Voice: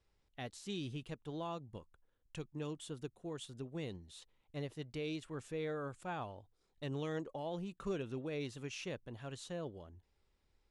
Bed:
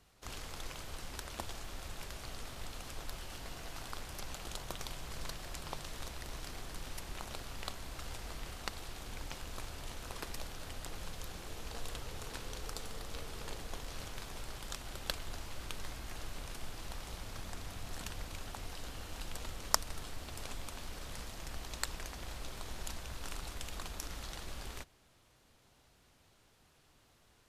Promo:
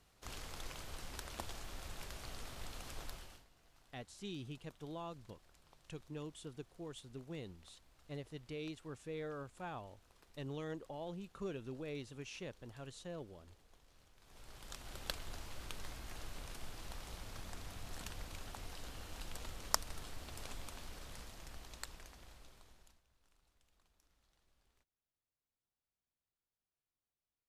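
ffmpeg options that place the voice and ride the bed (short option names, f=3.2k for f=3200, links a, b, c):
-filter_complex "[0:a]adelay=3550,volume=-4dB[a];[1:a]volume=16.5dB,afade=t=out:st=3.03:d=0.43:silence=0.0944061,afade=t=in:st=14.19:d=0.8:silence=0.105925,afade=t=out:st=20.59:d=2.43:silence=0.0354813[b];[a][b]amix=inputs=2:normalize=0"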